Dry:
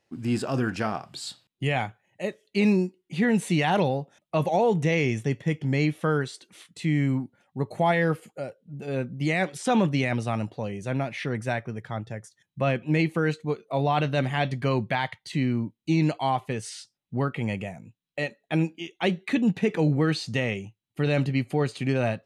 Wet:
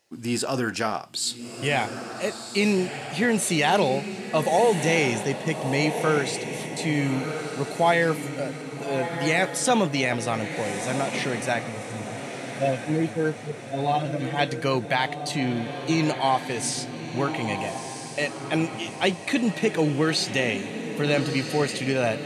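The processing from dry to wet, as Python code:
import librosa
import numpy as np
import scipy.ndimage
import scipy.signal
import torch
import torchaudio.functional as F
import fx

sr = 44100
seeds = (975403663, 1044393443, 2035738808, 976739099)

y = fx.hpss_only(x, sr, part='harmonic', at=(11.66, 14.39))
y = fx.bass_treble(y, sr, bass_db=-8, treble_db=9)
y = fx.echo_diffused(y, sr, ms=1299, feedback_pct=50, wet_db=-8)
y = y * 10.0 ** (3.0 / 20.0)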